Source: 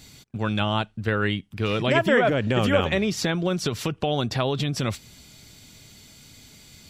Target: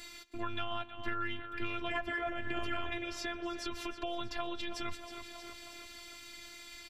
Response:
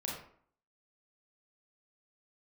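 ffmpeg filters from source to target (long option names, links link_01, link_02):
-filter_complex "[0:a]asplit=2[link_01][link_02];[link_02]aecho=0:1:317|634|951|1268|1585:0.178|0.0925|0.0481|0.025|0.013[link_03];[link_01][link_03]amix=inputs=2:normalize=0,flanger=delay=4.8:depth=3.1:regen=-82:speed=0.55:shape=triangular,equalizer=frequency=1600:width=0.45:gain=10.5,asplit=2[link_04][link_05];[link_05]adelay=122.4,volume=-23dB,highshelf=frequency=4000:gain=-2.76[link_06];[link_04][link_06]amix=inputs=2:normalize=0,afftfilt=real='hypot(re,im)*cos(PI*b)':imag='0':win_size=512:overlap=0.75,asplit=2[link_07][link_08];[link_08]asoftclip=type=tanh:threshold=-19dB,volume=-11.5dB[link_09];[link_07][link_09]amix=inputs=2:normalize=0,acrossover=split=130[link_10][link_11];[link_11]acompressor=threshold=-45dB:ratio=2.5[link_12];[link_10][link_12]amix=inputs=2:normalize=0,volume=1.5dB"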